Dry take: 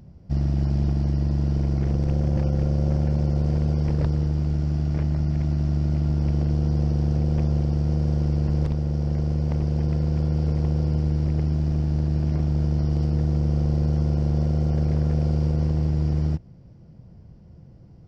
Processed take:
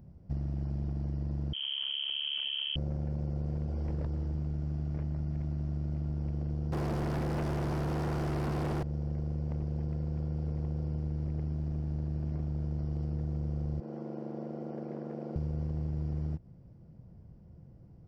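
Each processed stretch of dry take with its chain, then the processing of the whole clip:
1.53–2.76 doubler 23 ms -11.5 dB + inverted band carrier 3200 Hz
3.66–4.35 notches 50/100/150/200/250/300/350/400 Hz + doubler 16 ms -13 dB
6.72–8.83 CVSD 64 kbps + overdrive pedal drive 39 dB, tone 2900 Hz, clips at -11.5 dBFS
13.8–15.36 HPF 240 Hz 24 dB/oct + high shelf 2700 Hz -12 dB
whole clip: bell 4800 Hz -8 dB 2.3 oct; compressor, threshold -24 dBFS; gain -6 dB

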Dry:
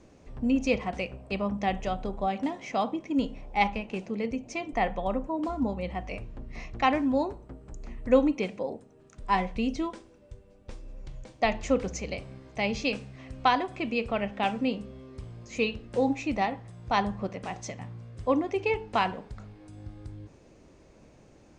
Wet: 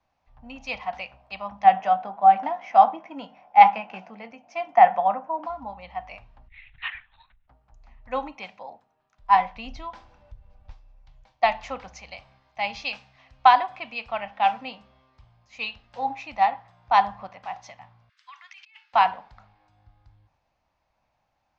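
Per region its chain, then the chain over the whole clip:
1.64–5.46 speaker cabinet 190–7000 Hz, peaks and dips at 190 Hz +10 dB, 320 Hz +5 dB, 480 Hz +3 dB, 710 Hz +7 dB, 1500 Hz +5 dB, 4000 Hz -7 dB + doubler 18 ms -13 dB
6.48–7.48 Chebyshev band-stop 100–1700 Hz, order 3 + LPC vocoder at 8 kHz whisper
9.65–10.72 low shelf 140 Hz +11 dB + upward compressor, threshold -29 dBFS
18.09–18.93 steep high-pass 1400 Hz + negative-ratio compressor -46 dBFS
whole clip: LPF 5100 Hz 24 dB/oct; resonant low shelf 570 Hz -11.5 dB, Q 3; three-band expander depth 40%

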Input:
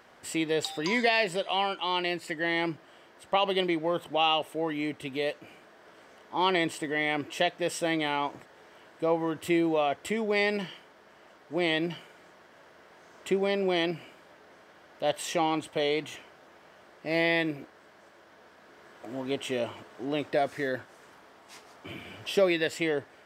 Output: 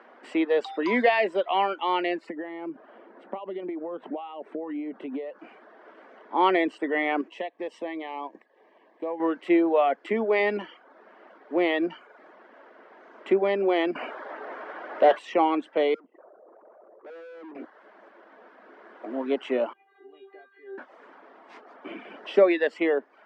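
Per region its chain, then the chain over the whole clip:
2.29–5.39 compressor 16:1, threshold -37 dBFS + tilt -3 dB/oct
7.28–9.2 G.711 law mismatch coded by A + Butterworth band-stop 1400 Hz, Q 3.3 + compressor 2.5:1, threshold -37 dBFS
13.95–15.19 high shelf 6200 Hz +10 dB + overdrive pedal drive 23 dB, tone 1300 Hz, clips at -12.5 dBFS + doubler 16 ms -12 dB
15.94–17.55 formant sharpening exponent 3 + LPF 1200 Hz 24 dB/oct + tube stage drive 47 dB, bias 0.4
19.73–20.78 upward compressor, threshold -28 dBFS + brick-wall FIR band-pass 200–4700 Hz + metallic resonator 390 Hz, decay 0.66 s, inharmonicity 0.002
whole clip: steep high-pass 220 Hz 48 dB/oct; reverb removal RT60 0.54 s; LPF 1800 Hz 12 dB/oct; gain +6 dB

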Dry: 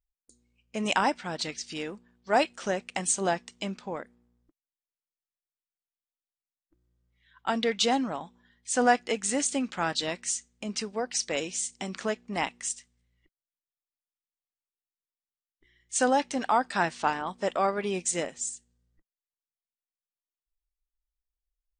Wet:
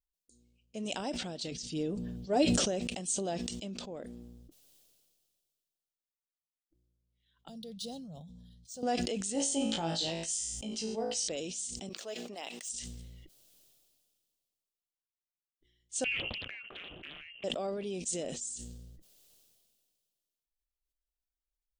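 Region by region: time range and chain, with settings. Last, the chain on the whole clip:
1.51–2.65 low shelf 410 Hz +11.5 dB + comb 6.8 ms, depth 49%
7.48–8.83 EQ curve 110 Hz 0 dB, 160 Hz +6 dB, 330 Hz -23 dB, 500 Hz -11 dB, 2200 Hz -25 dB, 4200 Hz -3 dB, 7900 Hz -6 dB + decimation joined by straight lines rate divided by 3×
9.33–11.28 small resonant body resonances 860/3100 Hz, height 12 dB + flutter echo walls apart 3.1 m, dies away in 0.34 s
11.89–12.69 median filter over 3 samples + HPF 550 Hz + mismatched tape noise reduction decoder only
16.04–17.44 inverted band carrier 3000 Hz + compressor 4:1, threshold -28 dBFS + Doppler distortion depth 0.76 ms
whole clip: band shelf 1400 Hz -13 dB; sustainer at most 28 dB/s; gain -7.5 dB

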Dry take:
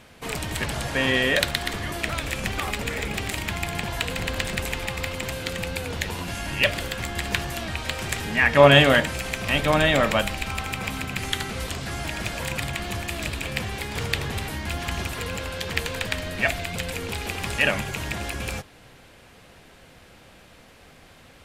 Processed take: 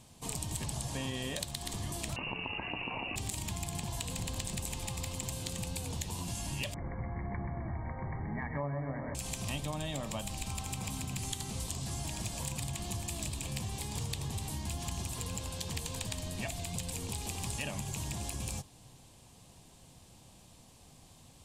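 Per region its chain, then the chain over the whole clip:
2.16–3.16 inverted band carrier 2800 Hz + fast leveller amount 100%
6.74–9.15 brick-wall FIR low-pass 2300 Hz + split-band echo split 490 Hz, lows 83 ms, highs 0.129 s, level -5.5 dB
whole clip: graphic EQ 125/500/1000/2000/8000 Hz +5/-7/+4/-11/+9 dB; compressor 10:1, threshold -26 dBFS; bell 1400 Hz -12 dB 0.43 oct; gain -6.5 dB

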